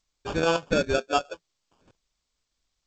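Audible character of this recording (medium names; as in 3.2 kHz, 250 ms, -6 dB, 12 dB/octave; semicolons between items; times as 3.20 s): chopped level 1.6 Hz, depth 65%, duty 90%; aliases and images of a low sample rate 2 kHz, jitter 0%; G.722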